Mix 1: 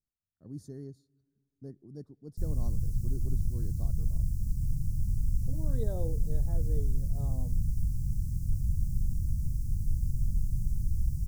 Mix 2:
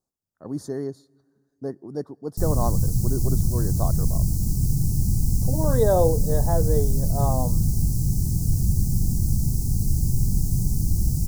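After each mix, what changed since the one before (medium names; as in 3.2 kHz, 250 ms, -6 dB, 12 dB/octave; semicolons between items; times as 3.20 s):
speech -6.0 dB; master: remove amplifier tone stack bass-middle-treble 10-0-1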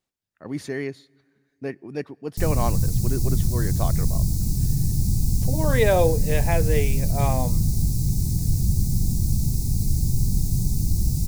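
master: remove Butterworth band-stop 2.5 kHz, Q 0.62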